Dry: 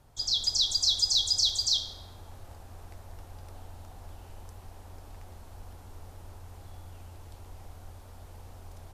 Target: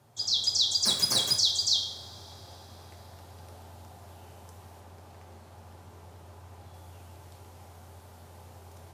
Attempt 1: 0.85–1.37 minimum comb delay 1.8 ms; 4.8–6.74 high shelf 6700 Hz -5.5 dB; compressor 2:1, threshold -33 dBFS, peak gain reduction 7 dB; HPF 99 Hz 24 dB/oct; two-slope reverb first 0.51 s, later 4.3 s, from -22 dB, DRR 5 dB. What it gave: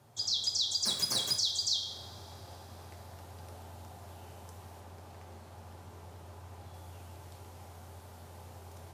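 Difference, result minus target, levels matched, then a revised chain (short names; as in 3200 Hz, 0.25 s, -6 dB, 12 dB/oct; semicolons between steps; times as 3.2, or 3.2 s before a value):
compressor: peak gain reduction +7 dB
0.85–1.37 minimum comb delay 1.8 ms; 4.8–6.74 high shelf 6700 Hz -5.5 dB; HPF 99 Hz 24 dB/oct; two-slope reverb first 0.51 s, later 4.3 s, from -22 dB, DRR 5 dB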